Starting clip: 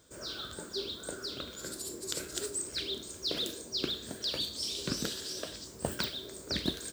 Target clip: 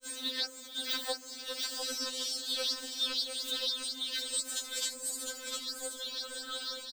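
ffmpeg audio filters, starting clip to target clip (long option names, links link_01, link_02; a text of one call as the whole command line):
ffmpeg -i in.wav -filter_complex "[0:a]areverse,acrossover=split=410[link_01][link_02];[link_01]acompressor=threshold=-50dB:ratio=6[link_03];[link_03][link_02]amix=inputs=2:normalize=0,bandreject=frequency=128.1:width_type=h:width=4,bandreject=frequency=256.2:width_type=h:width=4,bandreject=frequency=384.3:width_type=h:width=4,asubboost=boost=9.5:cutoff=60,aecho=1:1:704:0.531,afftfilt=real='re*3.46*eq(mod(b,12),0)':imag='im*3.46*eq(mod(b,12),0)':win_size=2048:overlap=0.75,volume=3.5dB" out.wav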